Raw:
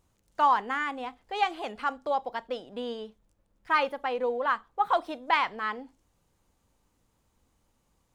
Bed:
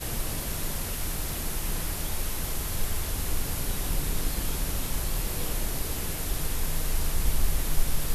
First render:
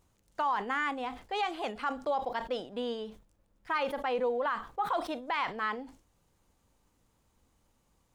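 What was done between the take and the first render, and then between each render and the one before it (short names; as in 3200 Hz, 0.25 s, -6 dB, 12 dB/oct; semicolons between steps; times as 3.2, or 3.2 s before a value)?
limiter -22.5 dBFS, peak gain reduction 11.5 dB; sustainer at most 130 dB/s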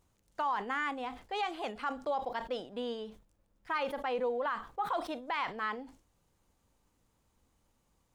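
gain -2.5 dB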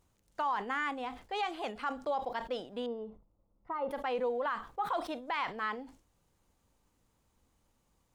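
2.86–3.91 polynomial smoothing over 65 samples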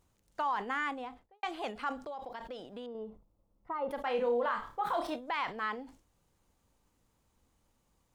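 0.84–1.43 studio fade out; 1.97–2.95 compressor 3:1, threshold -41 dBFS; 4.01–5.16 flutter echo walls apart 5 m, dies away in 0.28 s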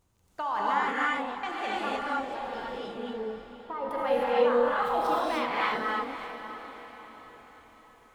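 diffused feedback echo 0.562 s, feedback 48%, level -11 dB; non-linear reverb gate 0.33 s rising, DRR -6 dB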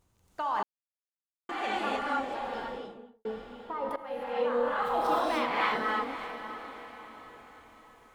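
0.63–1.49 mute; 2.55–3.25 studio fade out; 3.96–5.17 fade in, from -15.5 dB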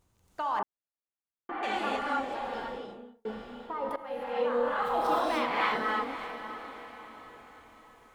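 0.59–1.63 LPF 1700 Hz; 2.85–3.66 doubler 33 ms -4.5 dB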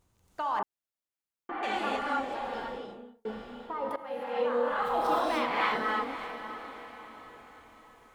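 3.84–4.69 HPF 52 Hz -> 180 Hz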